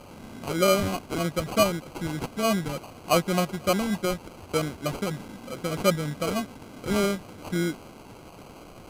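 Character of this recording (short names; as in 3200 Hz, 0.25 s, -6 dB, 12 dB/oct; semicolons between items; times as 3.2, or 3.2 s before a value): a quantiser's noise floor 8-bit, dither triangular; phasing stages 4, 3.3 Hz, lowest notch 670–4000 Hz; aliases and images of a low sample rate 1800 Hz, jitter 0%; AC-3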